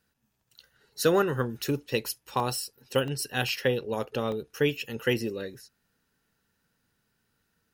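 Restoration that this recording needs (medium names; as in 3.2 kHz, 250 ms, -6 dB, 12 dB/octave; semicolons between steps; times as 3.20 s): interpolate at 2.40/3.08/3.49/4.32 s, 1 ms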